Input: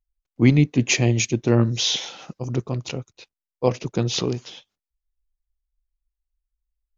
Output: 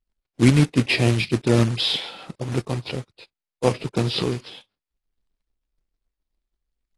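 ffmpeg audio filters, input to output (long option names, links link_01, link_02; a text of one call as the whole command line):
ffmpeg -i in.wav -af "aresample=11025,aresample=44100,acrusher=bits=3:mode=log:mix=0:aa=0.000001" -ar 24000 -c:a aac -b:a 32k out.aac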